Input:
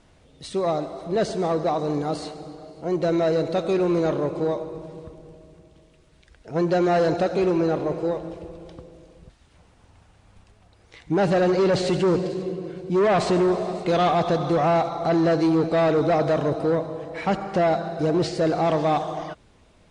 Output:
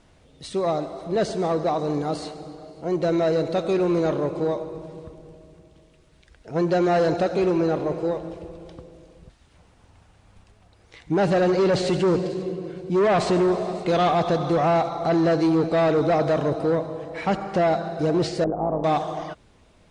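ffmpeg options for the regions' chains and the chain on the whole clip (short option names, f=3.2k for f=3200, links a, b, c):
-filter_complex "[0:a]asettb=1/sr,asplit=3[a][b][c];[a]atrim=end=18.444[d];[b]atrim=start=18.44:end=18.84,asetpts=PTS-STARTPTS,afade=t=in:d=0.004:c=qsin,afade=t=out:st=0.396:d=0.004:c=qsin,lowpass=f=1k:w=0.5412,lowpass=f=1k:w=1.3066,tremolo=f=110:d=0.667[e];[c]atrim=start=18.836[f];[d][e]acrossfade=d=0.004:c1=hsin:c2=qsin[g];[g][f]acrossfade=d=0.004:c1=qsin:c2=hsin"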